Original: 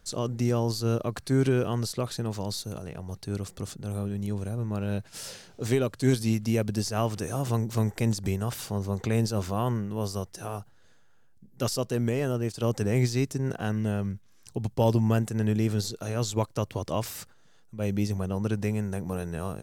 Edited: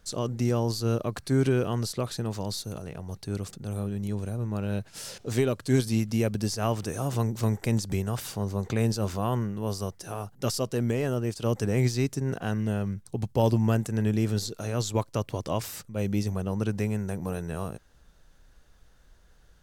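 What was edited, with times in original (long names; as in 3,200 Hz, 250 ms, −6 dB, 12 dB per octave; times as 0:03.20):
truncate silence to 0.14 s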